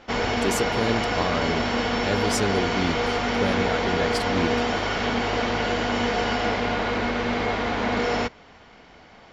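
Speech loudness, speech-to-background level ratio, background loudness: -29.0 LUFS, -4.5 dB, -24.5 LUFS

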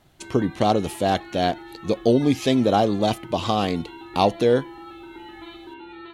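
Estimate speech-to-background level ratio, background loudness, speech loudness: 18.5 dB, -40.5 LUFS, -22.0 LUFS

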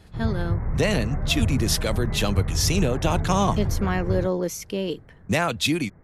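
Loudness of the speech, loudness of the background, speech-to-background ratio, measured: -25.0 LUFS, -28.5 LUFS, 3.5 dB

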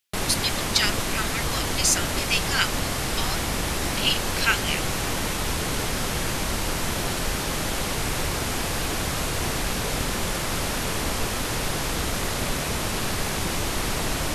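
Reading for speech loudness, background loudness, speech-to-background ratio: -25.5 LUFS, -26.0 LUFS, 0.5 dB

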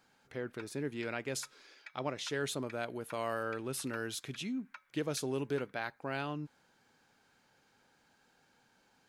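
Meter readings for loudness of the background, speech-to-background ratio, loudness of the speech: -57.0 LUFS, 18.5 dB, -38.5 LUFS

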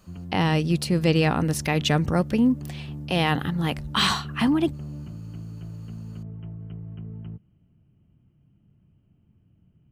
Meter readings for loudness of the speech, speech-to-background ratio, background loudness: -23.5 LUFS, 13.5 dB, -37.0 LUFS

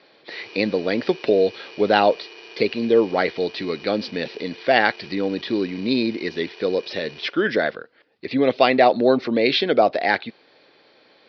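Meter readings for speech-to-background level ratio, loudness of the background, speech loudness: 20.0 dB, -41.0 LUFS, -21.0 LUFS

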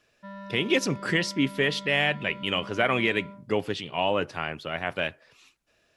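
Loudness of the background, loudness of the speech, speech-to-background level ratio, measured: -43.0 LUFS, -27.0 LUFS, 16.0 dB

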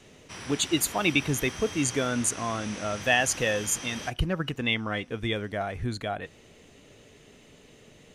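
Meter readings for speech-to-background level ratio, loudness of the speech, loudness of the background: 10.5 dB, -28.0 LUFS, -38.5 LUFS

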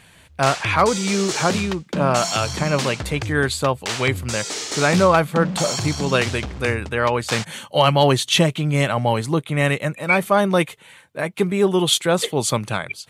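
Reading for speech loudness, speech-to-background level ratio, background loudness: -20.5 LUFS, 6.5 dB, -27.0 LUFS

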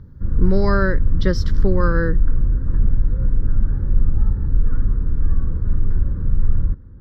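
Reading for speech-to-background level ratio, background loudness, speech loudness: 0.5 dB, -23.0 LUFS, -22.5 LUFS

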